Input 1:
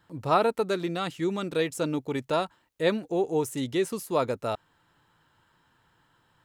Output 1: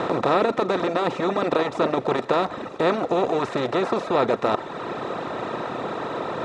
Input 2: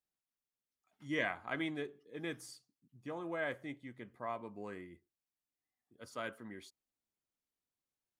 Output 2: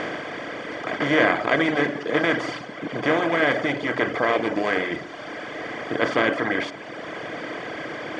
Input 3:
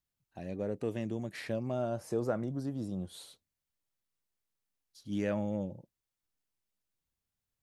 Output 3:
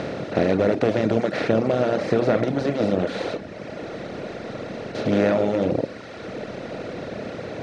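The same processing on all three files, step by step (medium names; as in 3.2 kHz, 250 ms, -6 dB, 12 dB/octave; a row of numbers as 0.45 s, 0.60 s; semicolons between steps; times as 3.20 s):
spectral levelling over time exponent 0.2; low-pass 6.1 kHz 24 dB/octave; treble shelf 4.4 kHz -5.5 dB; Schroeder reverb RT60 1.5 s, combs from 28 ms, DRR 9 dB; reverb removal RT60 1.6 s; normalise loudness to -24 LUFS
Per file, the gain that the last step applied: -1.5 dB, +13.5 dB, +10.0 dB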